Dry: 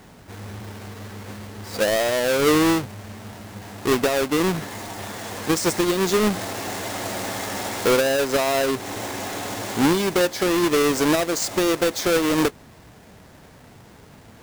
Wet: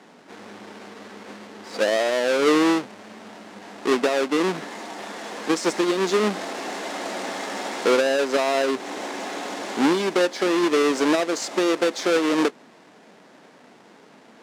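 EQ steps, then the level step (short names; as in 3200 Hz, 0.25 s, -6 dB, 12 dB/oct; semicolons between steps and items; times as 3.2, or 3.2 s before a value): HPF 220 Hz 24 dB/oct; air absorption 67 m; 0.0 dB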